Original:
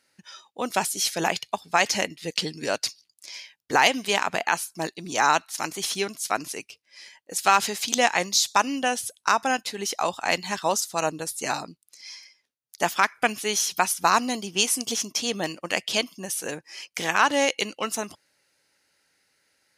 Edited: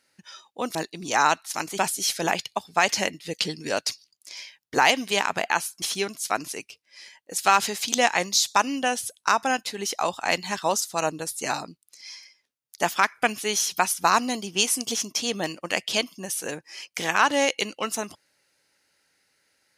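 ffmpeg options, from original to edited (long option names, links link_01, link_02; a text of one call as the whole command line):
ffmpeg -i in.wav -filter_complex "[0:a]asplit=4[link_01][link_02][link_03][link_04];[link_01]atrim=end=0.752[link_05];[link_02]atrim=start=4.788:end=5.822[link_06];[link_03]atrim=start=0.748:end=4.792[link_07];[link_04]atrim=start=5.818[link_08];[link_05][link_06]acrossfade=duration=0.004:curve1=hsin:curve2=hsin[link_09];[link_09][link_07]acrossfade=duration=0.004:curve1=hsin:curve2=hsin[link_10];[link_10][link_08]acrossfade=duration=0.004:curve1=hsin:curve2=hsin" out.wav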